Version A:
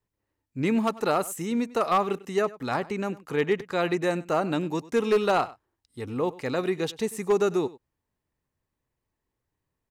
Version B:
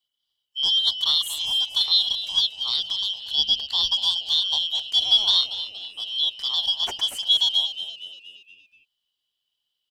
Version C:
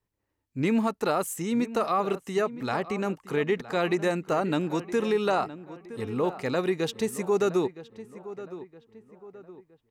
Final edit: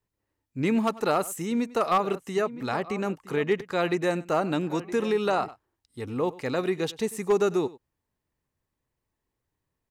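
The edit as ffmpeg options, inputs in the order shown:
-filter_complex "[2:a]asplit=2[s0][s1];[0:a]asplit=3[s2][s3][s4];[s2]atrim=end=1.982[s5];[s0]atrim=start=1.978:end=3.492[s6];[s3]atrim=start=3.488:end=4.632[s7];[s1]atrim=start=4.628:end=5.482[s8];[s4]atrim=start=5.478[s9];[s5][s6]acrossfade=d=0.004:c1=hsin:c2=hsin[s10];[s10][s7]acrossfade=d=0.004:c1=hsin:c2=hsin[s11];[s11][s8]acrossfade=d=0.004:c1=hsin:c2=hsin[s12];[s12][s9]acrossfade=d=0.004:c1=hsin:c2=hsin"

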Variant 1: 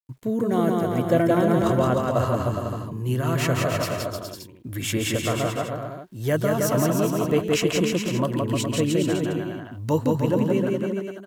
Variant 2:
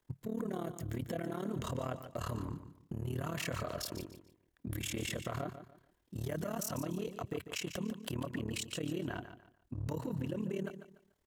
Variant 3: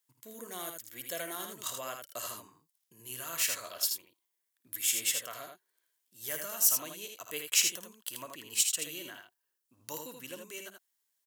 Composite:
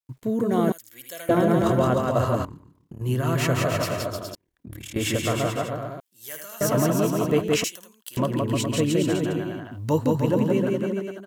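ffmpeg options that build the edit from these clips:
-filter_complex "[2:a]asplit=3[s0][s1][s2];[1:a]asplit=2[s3][s4];[0:a]asplit=6[s5][s6][s7][s8][s9][s10];[s5]atrim=end=0.722[s11];[s0]atrim=start=0.718:end=1.292[s12];[s6]atrim=start=1.288:end=2.452[s13];[s3]atrim=start=2.448:end=3.012[s14];[s7]atrim=start=3.008:end=4.352[s15];[s4]atrim=start=4.348:end=4.962[s16];[s8]atrim=start=4.958:end=6.002[s17];[s1]atrim=start=5.998:end=6.612[s18];[s9]atrim=start=6.608:end=7.642[s19];[s2]atrim=start=7.638:end=8.172[s20];[s10]atrim=start=8.168[s21];[s11][s12]acrossfade=d=0.004:c1=hsin:c2=hsin[s22];[s22][s13]acrossfade=d=0.004:c1=hsin:c2=hsin[s23];[s23][s14]acrossfade=d=0.004:c1=hsin:c2=hsin[s24];[s24][s15]acrossfade=d=0.004:c1=hsin:c2=hsin[s25];[s25][s16]acrossfade=d=0.004:c1=hsin:c2=hsin[s26];[s26][s17]acrossfade=d=0.004:c1=hsin:c2=hsin[s27];[s27][s18]acrossfade=d=0.004:c1=hsin:c2=hsin[s28];[s28][s19]acrossfade=d=0.004:c1=hsin:c2=hsin[s29];[s29][s20]acrossfade=d=0.004:c1=hsin:c2=hsin[s30];[s30][s21]acrossfade=d=0.004:c1=hsin:c2=hsin"

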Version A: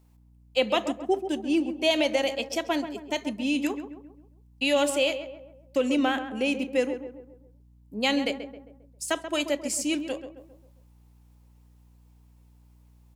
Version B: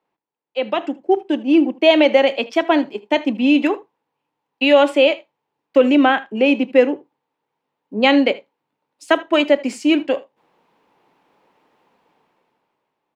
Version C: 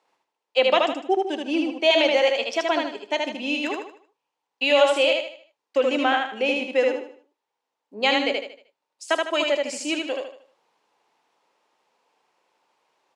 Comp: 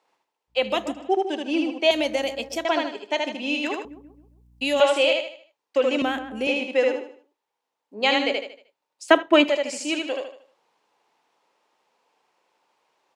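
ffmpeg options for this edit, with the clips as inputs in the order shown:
-filter_complex "[0:a]asplit=4[s0][s1][s2][s3];[2:a]asplit=6[s4][s5][s6][s7][s8][s9];[s4]atrim=end=0.71[s10];[s0]atrim=start=0.47:end=1.13[s11];[s5]atrim=start=0.89:end=1.912[s12];[s1]atrim=start=1.908:end=2.652[s13];[s6]atrim=start=2.648:end=3.852[s14];[s2]atrim=start=3.848:end=4.802[s15];[s7]atrim=start=4.798:end=6.022[s16];[s3]atrim=start=6.018:end=6.472[s17];[s8]atrim=start=6.468:end=9.082[s18];[1:a]atrim=start=9.078:end=9.492[s19];[s9]atrim=start=9.488[s20];[s10][s11]acrossfade=d=0.24:c1=tri:c2=tri[s21];[s21][s12]acrossfade=d=0.24:c1=tri:c2=tri[s22];[s22][s13]acrossfade=d=0.004:c1=hsin:c2=hsin[s23];[s23][s14]acrossfade=d=0.004:c1=hsin:c2=hsin[s24];[s24][s15]acrossfade=d=0.004:c1=hsin:c2=hsin[s25];[s25][s16]acrossfade=d=0.004:c1=hsin:c2=hsin[s26];[s26][s17]acrossfade=d=0.004:c1=hsin:c2=hsin[s27];[s27][s18]acrossfade=d=0.004:c1=hsin:c2=hsin[s28];[s28][s19]acrossfade=d=0.004:c1=hsin:c2=hsin[s29];[s29][s20]acrossfade=d=0.004:c1=hsin:c2=hsin"

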